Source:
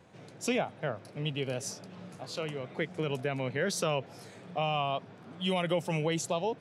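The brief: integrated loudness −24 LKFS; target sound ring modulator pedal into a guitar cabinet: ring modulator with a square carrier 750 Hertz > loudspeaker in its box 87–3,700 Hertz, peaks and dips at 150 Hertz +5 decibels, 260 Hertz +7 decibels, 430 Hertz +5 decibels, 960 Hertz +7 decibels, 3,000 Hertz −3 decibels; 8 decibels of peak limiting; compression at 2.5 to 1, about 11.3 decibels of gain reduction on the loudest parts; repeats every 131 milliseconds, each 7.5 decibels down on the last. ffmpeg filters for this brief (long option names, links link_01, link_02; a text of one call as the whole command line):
ffmpeg -i in.wav -af "acompressor=threshold=-43dB:ratio=2.5,alimiter=level_in=10dB:limit=-24dB:level=0:latency=1,volume=-10dB,aecho=1:1:131|262|393|524|655:0.422|0.177|0.0744|0.0312|0.0131,aeval=exprs='val(0)*sgn(sin(2*PI*750*n/s))':channel_layout=same,highpass=87,equalizer=frequency=150:width_type=q:width=4:gain=5,equalizer=frequency=260:width_type=q:width=4:gain=7,equalizer=frequency=430:width_type=q:width=4:gain=5,equalizer=frequency=960:width_type=q:width=4:gain=7,equalizer=frequency=3000:width_type=q:width=4:gain=-3,lowpass=frequency=3700:width=0.5412,lowpass=frequency=3700:width=1.3066,volume=18.5dB" out.wav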